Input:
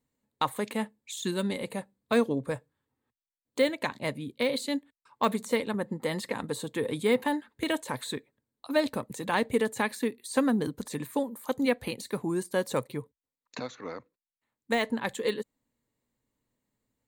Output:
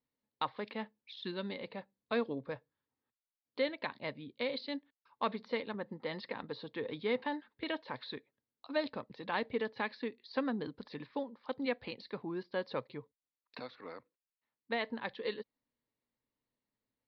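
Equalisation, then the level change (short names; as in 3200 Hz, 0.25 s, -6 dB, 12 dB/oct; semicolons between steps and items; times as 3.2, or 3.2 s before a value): steep low-pass 5100 Hz 96 dB/oct; low shelf 250 Hz -7 dB; -7.0 dB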